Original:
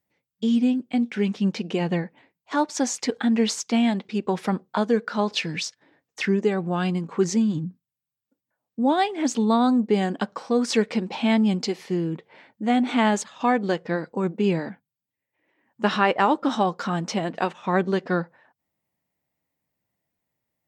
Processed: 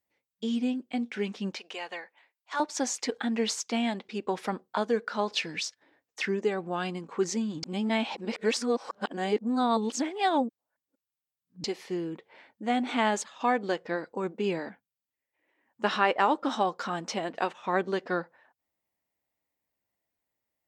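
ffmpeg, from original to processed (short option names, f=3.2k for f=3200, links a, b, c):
-filter_complex "[0:a]asettb=1/sr,asplit=3[a][b][c];[a]atrim=end=1.554[d];[b]atrim=start=1.55:end=2.6,asetpts=PTS-STARTPTS,afade=t=in:d=0.004:c=qsin,afade=t=out:st=1.046:d=0.004:c=qsin,highpass=820[e];[c]atrim=start=2.596[f];[d][e]acrossfade=d=0.004:c1=hsin:c2=qsin[g];[g][f]acrossfade=d=0.004:c1=qsin:c2=hsin,asplit=3[h][i][j];[h]atrim=end=7.632[k];[i]atrim=start=7.628:end=11.642,asetpts=PTS-STARTPTS,areverse[l];[j]atrim=start=11.638[m];[k][l]acrossfade=d=0.004:c1=hsin:c2=hsin[n];[n][m]acrossfade=d=0.004:c1=hsin:c2=hsin,equalizer=f=150:w=1.1:g=-11,volume=-3.5dB"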